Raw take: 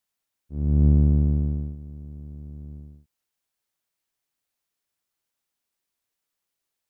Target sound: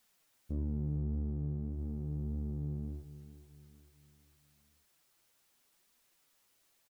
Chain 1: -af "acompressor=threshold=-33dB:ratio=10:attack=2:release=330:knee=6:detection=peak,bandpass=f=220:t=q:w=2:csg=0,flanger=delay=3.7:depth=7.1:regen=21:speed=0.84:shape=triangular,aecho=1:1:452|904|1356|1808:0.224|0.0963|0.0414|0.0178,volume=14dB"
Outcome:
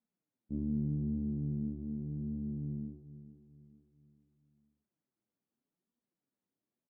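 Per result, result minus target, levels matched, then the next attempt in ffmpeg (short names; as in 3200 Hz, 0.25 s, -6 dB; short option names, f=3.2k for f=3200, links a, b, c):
compressor: peak gain reduction -7 dB; 250 Hz band +4.0 dB
-af "acompressor=threshold=-41dB:ratio=10:attack=2:release=330:knee=6:detection=peak,bandpass=f=220:t=q:w=2:csg=0,flanger=delay=3.7:depth=7.1:regen=21:speed=0.84:shape=triangular,aecho=1:1:452|904|1356|1808:0.224|0.0963|0.0414|0.0178,volume=14dB"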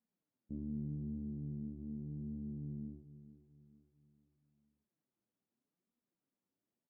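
250 Hz band +4.0 dB
-af "acompressor=threshold=-41dB:ratio=10:attack=2:release=330:knee=6:detection=peak,flanger=delay=3.7:depth=7.1:regen=21:speed=0.84:shape=triangular,aecho=1:1:452|904|1356|1808:0.224|0.0963|0.0414|0.0178,volume=14dB"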